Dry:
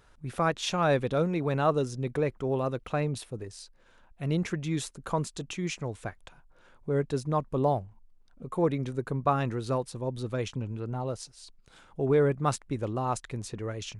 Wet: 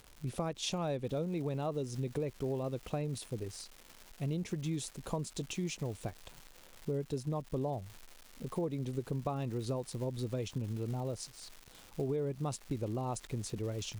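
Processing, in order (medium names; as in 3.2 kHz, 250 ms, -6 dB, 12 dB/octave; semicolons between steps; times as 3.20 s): peaking EQ 1.5 kHz -12.5 dB 1.2 oct; crackle 200 per s -42 dBFS, from 1.04 s 460 per s; compression 6:1, threshold -32 dBFS, peak gain reduction 11.5 dB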